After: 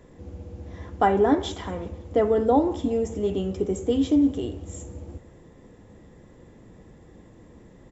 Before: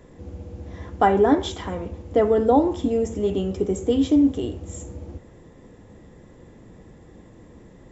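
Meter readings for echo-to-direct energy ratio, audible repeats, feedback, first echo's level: -21.0 dB, 2, 45%, -22.0 dB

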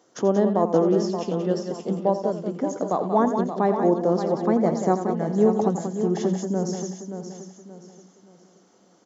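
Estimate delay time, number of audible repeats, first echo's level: 86 ms, 9, -11.0 dB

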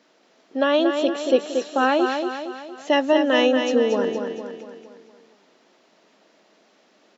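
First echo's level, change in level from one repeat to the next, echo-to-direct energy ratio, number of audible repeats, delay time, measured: -6.0 dB, -6.0 dB, -5.0 dB, 5, 231 ms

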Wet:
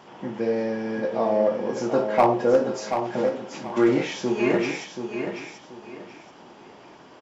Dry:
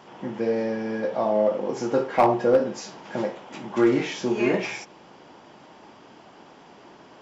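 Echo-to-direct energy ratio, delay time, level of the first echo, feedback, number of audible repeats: -7.0 dB, 732 ms, -7.5 dB, 27%, 3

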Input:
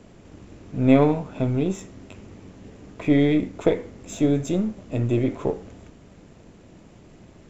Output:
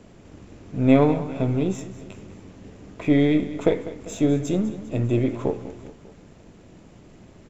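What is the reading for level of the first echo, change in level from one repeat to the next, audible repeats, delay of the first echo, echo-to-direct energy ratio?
-15.0 dB, -5.0 dB, 3, 199 ms, -13.5 dB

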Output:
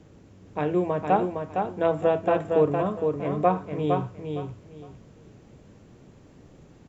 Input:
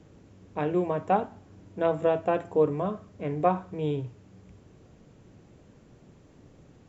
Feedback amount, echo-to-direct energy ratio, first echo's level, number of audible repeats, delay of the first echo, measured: 22%, -5.0 dB, -5.0 dB, 3, 460 ms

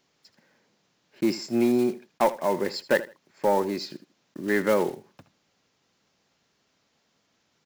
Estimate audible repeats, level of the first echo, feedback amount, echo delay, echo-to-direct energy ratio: 2, -17.0 dB, 22%, 79 ms, -17.0 dB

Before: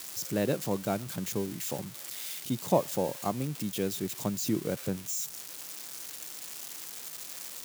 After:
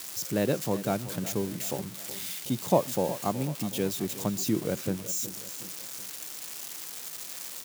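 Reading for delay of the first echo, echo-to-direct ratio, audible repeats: 371 ms, -13.5 dB, 3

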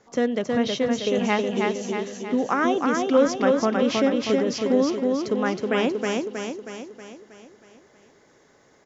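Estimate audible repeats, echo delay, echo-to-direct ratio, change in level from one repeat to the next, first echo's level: 6, 318 ms, -1.5 dB, -5.5 dB, -3.0 dB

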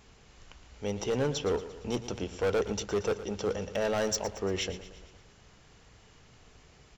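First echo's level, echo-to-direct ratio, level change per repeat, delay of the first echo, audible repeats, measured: -14.0 dB, -12.5 dB, -5.0 dB, 115 ms, 5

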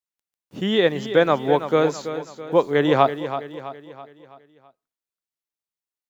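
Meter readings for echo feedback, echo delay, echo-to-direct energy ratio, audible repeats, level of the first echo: 47%, 329 ms, -10.0 dB, 4, -11.0 dB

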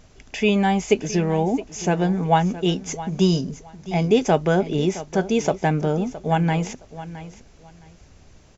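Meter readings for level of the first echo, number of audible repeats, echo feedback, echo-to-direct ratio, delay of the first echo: -15.0 dB, 2, 21%, -15.0 dB, 666 ms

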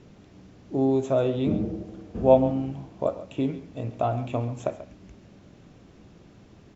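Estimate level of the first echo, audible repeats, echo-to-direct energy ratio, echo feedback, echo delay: -15.0 dB, 1, -15.0 dB, no regular repeats, 137 ms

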